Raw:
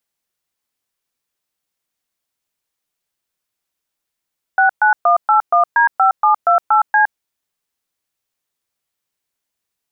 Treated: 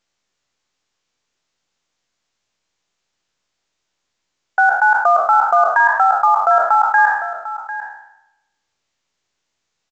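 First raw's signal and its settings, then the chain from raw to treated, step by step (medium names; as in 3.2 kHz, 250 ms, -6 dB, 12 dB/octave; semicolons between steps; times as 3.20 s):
DTMF "69181D5728C", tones 114 ms, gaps 122 ms, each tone -11.5 dBFS
spectral sustain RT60 0.83 s; delay 748 ms -13.5 dB; µ-law 128 kbps 16 kHz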